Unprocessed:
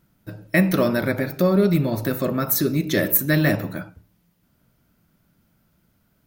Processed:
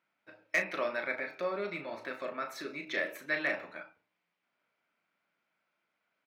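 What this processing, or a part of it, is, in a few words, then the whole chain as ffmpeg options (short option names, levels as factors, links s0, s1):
megaphone: -filter_complex "[0:a]highpass=680,lowpass=3100,equalizer=f=2300:t=o:w=0.36:g=8,asoftclip=type=hard:threshold=0.251,asplit=2[s0][s1];[s1]adelay=35,volume=0.398[s2];[s0][s2]amix=inputs=2:normalize=0,volume=0.376"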